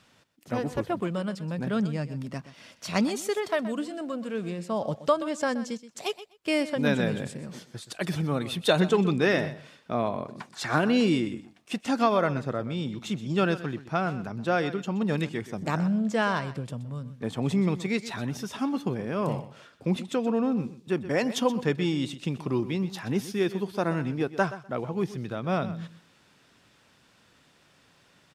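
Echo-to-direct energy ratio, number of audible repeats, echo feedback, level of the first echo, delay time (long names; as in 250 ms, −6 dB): −14.5 dB, 2, 17%, −14.5 dB, 125 ms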